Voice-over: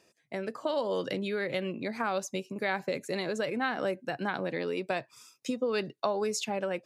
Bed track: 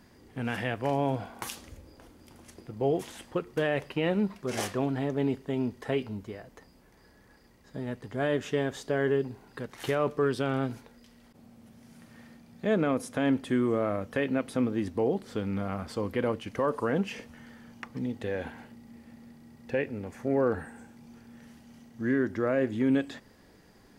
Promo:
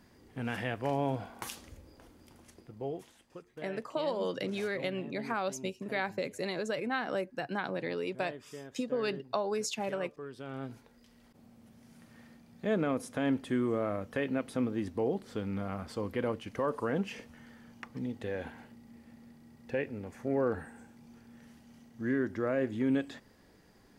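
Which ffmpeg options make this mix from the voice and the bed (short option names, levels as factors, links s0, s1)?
-filter_complex "[0:a]adelay=3300,volume=0.75[s0];[1:a]volume=3.16,afade=t=out:st=2.21:d=0.96:silence=0.199526,afade=t=in:st=10.33:d=0.87:silence=0.211349[s1];[s0][s1]amix=inputs=2:normalize=0"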